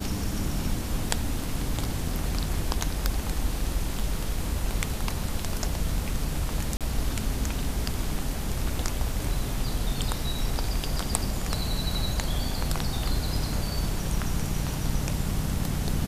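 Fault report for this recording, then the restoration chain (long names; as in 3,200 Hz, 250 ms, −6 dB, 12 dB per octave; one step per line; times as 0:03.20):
0:01.09: drop-out 3.7 ms
0:06.77–0:06.81: drop-out 37 ms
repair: repair the gap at 0:01.09, 3.7 ms
repair the gap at 0:06.77, 37 ms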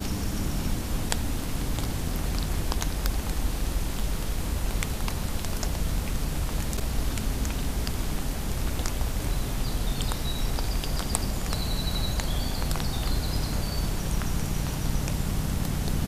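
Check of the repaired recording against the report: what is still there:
none of them is left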